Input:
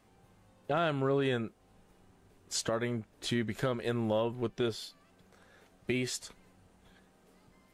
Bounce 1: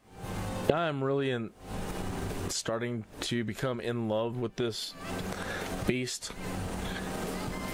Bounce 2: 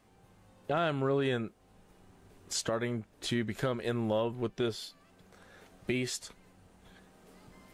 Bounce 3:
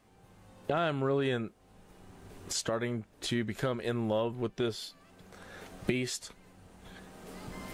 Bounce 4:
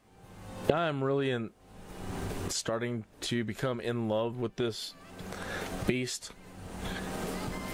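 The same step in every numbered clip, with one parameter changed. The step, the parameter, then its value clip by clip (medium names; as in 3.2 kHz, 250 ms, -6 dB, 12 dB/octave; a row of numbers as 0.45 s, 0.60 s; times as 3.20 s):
recorder AGC, rising by: 91 dB/s, 5.1 dB/s, 14 dB/s, 37 dB/s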